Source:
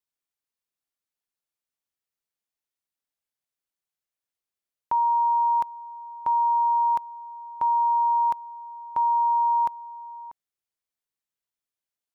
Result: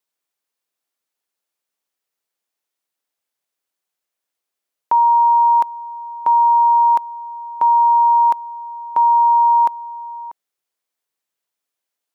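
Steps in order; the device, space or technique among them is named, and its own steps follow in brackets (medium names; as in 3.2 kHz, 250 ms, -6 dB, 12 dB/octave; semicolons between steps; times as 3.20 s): filter by subtraction (in parallel: low-pass 470 Hz + polarity flip); on the sum: trim +7.5 dB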